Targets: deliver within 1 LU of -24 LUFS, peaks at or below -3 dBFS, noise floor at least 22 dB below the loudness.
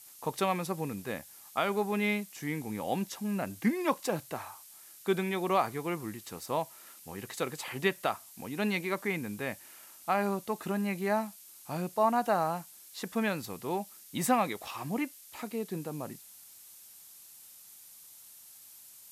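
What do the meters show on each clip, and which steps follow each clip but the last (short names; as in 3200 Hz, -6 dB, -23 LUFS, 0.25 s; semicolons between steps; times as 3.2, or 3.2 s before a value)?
noise floor -53 dBFS; noise floor target -55 dBFS; loudness -33.0 LUFS; peak -15.0 dBFS; loudness target -24.0 LUFS
-> denoiser 6 dB, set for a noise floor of -53 dBFS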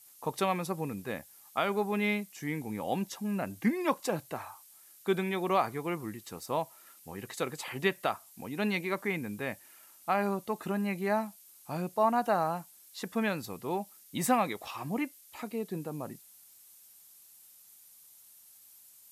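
noise floor -57 dBFS; loudness -33.0 LUFS; peak -15.0 dBFS; loudness target -24.0 LUFS
-> gain +9 dB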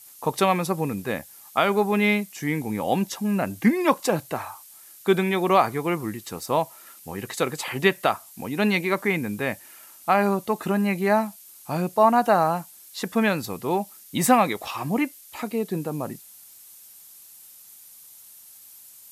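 loudness -24.0 LUFS; peak -6.0 dBFS; noise floor -48 dBFS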